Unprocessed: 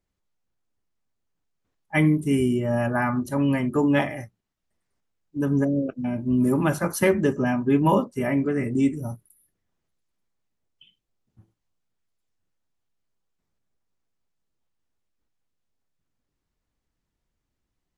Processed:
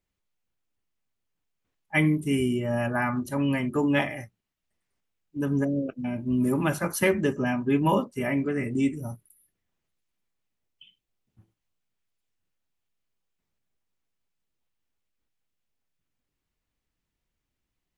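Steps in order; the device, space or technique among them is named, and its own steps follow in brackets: presence and air boost (bell 2600 Hz +5.5 dB 1.1 oct; high shelf 9900 Hz +5 dB); gain -3.5 dB

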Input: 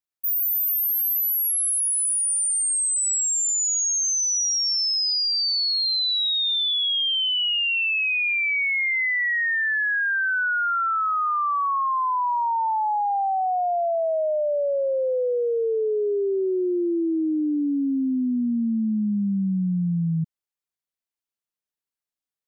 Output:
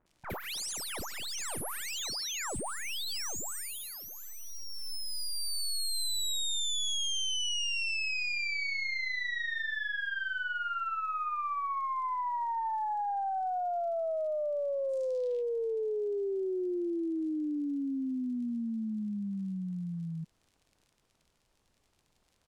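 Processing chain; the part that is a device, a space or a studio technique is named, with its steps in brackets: HPF 200 Hz; record under a worn stylus (tracing distortion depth 0.12 ms; crackle 59/s -41 dBFS; pink noise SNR 41 dB); 14.83–15.35 bell 9300 Hz -> 2900 Hz +14.5 dB 1.7 oct; LPF 10000 Hz 12 dB/oct; bands offset in time lows, highs 60 ms, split 1700 Hz; gain -9 dB

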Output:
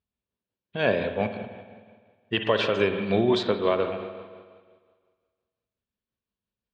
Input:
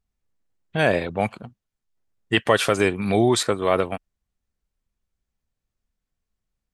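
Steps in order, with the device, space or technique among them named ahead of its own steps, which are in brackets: combo amplifier with spring reverb and tremolo (spring tank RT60 1.7 s, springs 46/51 ms, chirp 40 ms, DRR 6 dB; tremolo 5.7 Hz, depth 34%; speaker cabinet 110–4100 Hz, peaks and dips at 150 Hz -8 dB, 310 Hz -5 dB, 770 Hz -8 dB, 1300 Hz -6 dB, 2000 Hz -8 dB)

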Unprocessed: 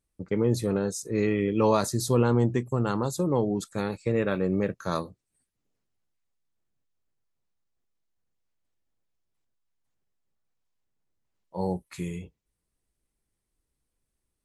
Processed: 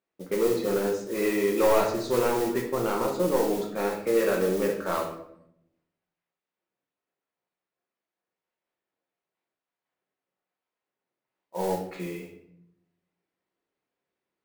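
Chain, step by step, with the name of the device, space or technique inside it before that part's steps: carbon microphone (BPF 350–2700 Hz; soft clip -21 dBFS, distortion -14 dB; modulation noise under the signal 15 dB); shoebox room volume 170 m³, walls mixed, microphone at 1 m; gain +2 dB

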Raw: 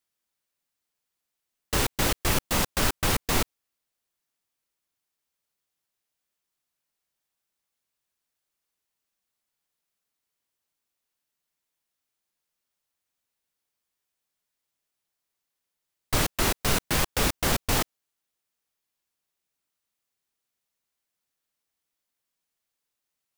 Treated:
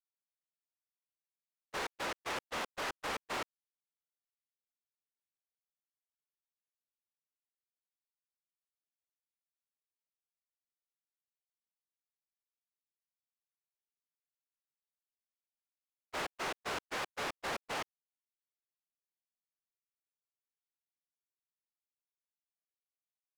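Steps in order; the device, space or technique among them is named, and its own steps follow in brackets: walkie-talkie (BPF 480–2300 Hz; hard clip -36.5 dBFS, distortion -6 dB; gate -39 dBFS, range -31 dB); gain +5 dB

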